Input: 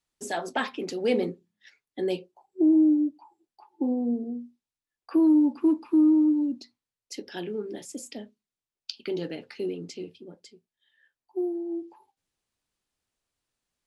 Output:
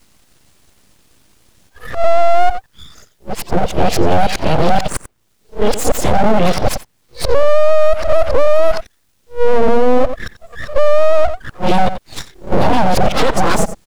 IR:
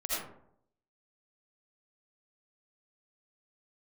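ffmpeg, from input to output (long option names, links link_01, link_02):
-filter_complex "[0:a]areverse,lowshelf=frequency=500:gain=5,acrossover=split=260|2100[link_01][link_02][link_03];[link_01]volume=33.5dB,asoftclip=hard,volume=-33.5dB[link_04];[link_04][link_02][link_03]amix=inputs=3:normalize=0,acompressor=threshold=-28dB:ratio=4,bass=frequency=250:gain=5,treble=frequency=4000:gain=1,acrossover=split=680|2300[link_05][link_06][link_07];[link_05]acompressor=threshold=-28dB:ratio=4[link_08];[link_06]acompressor=threshold=-54dB:ratio=4[link_09];[link_07]acompressor=threshold=-51dB:ratio=4[link_10];[link_08][link_09][link_10]amix=inputs=3:normalize=0,asplit=2[link_11][link_12];[link_12]aecho=0:1:90:0.15[link_13];[link_11][link_13]amix=inputs=2:normalize=0,aeval=exprs='abs(val(0))':channel_layout=same,alimiter=level_in=31dB:limit=-1dB:release=50:level=0:latency=1,volume=-1dB"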